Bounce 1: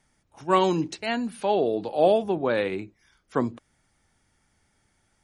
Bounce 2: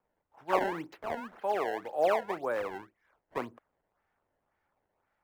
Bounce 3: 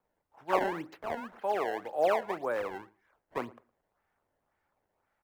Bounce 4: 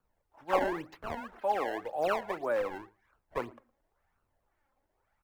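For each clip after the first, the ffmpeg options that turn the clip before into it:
-filter_complex "[0:a]acrusher=samples=21:mix=1:aa=0.000001:lfo=1:lforange=33.6:lforate=1.9,acrossover=split=450 2100:gain=0.2 1 0.1[s0][s1][s2];[s0][s1][s2]amix=inputs=3:normalize=0,volume=0.596"
-filter_complex "[0:a]asplit=2[s0][s1];[s1]adelay=112,lowpass=f=2000:p=1,volume=0.0794,asplit=2[s2][s3];[s3]adelay=112,lowpass=f=2000:p=1,volume=0.2[s4];[s0][s2][s4]amix=inputs=3:normalize=0"
-af "lowshelf=f=78:g=11,flanger=delay=0.7:depth=3.1:regen=34:speed=0.95:shape=sinusoidal,volume=1.5"

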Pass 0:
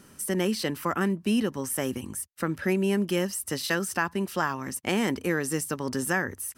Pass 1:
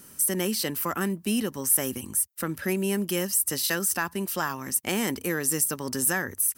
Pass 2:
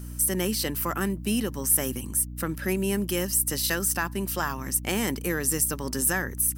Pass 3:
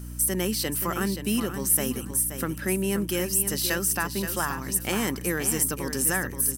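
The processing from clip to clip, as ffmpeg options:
-af "acontrast=82,aemphasis=mode=production:type=50fm,volume=0.376"
-af "aeval=exprs='val(0)+0.0158*(sin(2*PI*60*n/s)+sin(2*PI*2*60*n/s)/2+sin(2*PI*3*60*n/s)/3+sin(2*PI*4*60*n/s)/4+sin(2*PI*5*60*n/s)/5)':c=same"
-af "aecho=1:1:527|1054|1581:0.355|0.071|0.0142"

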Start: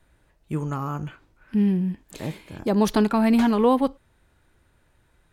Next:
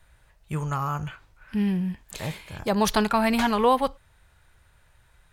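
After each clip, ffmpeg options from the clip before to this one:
-af "equalizer=f=290:w=1:g=-14.5,volume=1.78"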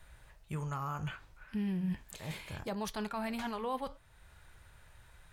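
-af "areverse,acompressor=threshold=0.0251:ratio=6,areverse,alimiter=level_in=1.78:limit=0.0631:level=0:latency=1:release=467,volume=0.562,flanger=delay=4.8:depth=7.2:regen=-81:speed=0.69:shape=sinusoidal,volume=1.88"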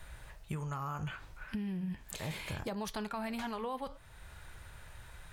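-af "acompressor=threshold=0.00794:ratio=10,volume=2.24"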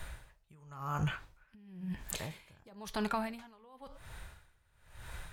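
-af "aeval=exprs='val(0)*pow(10,-28*(0.5-0.5*cos(2*PI*0.97*n/s))/20)':c=same,volume=2.11"

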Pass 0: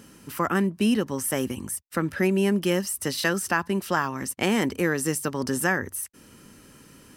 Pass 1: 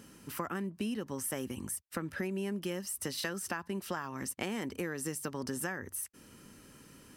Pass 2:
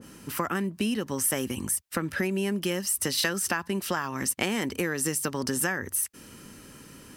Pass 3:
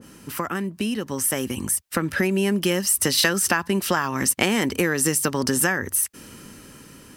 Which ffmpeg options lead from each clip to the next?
-af "acompressor=threshold=0.0398:ratio=6,volume=0.562"
-af "adynamicequalizer=threshold=0.00355:dfrequency=1600:dqfactor=0.7:tfrequency=1600:tqfactor=0.7:attack=5:release=100:ratio=0.375:range=2:mode=boostabove:tftype=highshelf,volume=2.37"
-af "dynaudnorm=f=510:g=7:m=2.24,volume=1.19"

